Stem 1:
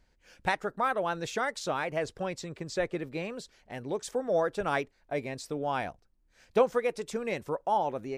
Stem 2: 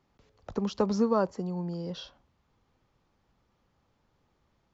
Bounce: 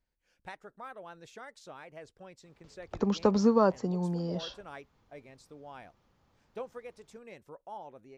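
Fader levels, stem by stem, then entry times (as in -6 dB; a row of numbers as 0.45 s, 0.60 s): -16.5 dB, +2.0 dB; 0.00 s, 2.45 s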